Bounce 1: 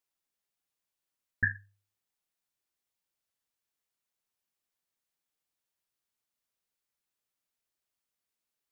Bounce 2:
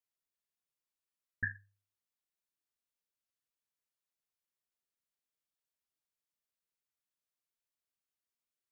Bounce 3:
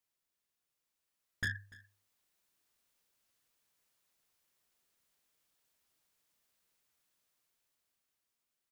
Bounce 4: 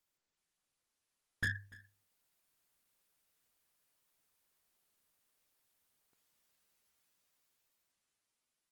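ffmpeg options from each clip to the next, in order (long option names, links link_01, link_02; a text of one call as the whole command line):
ffmpeg -i in.wav -af "bandreject=frequency=800:width=12,volume=-7.5dB" out.wav
ffmpeg -i in.wav -af "asoftclip=type=tanh:threshold=-39.5dB,aecho=1:1:292:0.0668,dynaudnorm=framelen=200:gausssize=17:maxgain=8.5dB,volume=5dB" out.wav
ffmpeg -i in.wav -af "volume=1dB" -ar 48000 -c:a libopus -b:a 24k out.opus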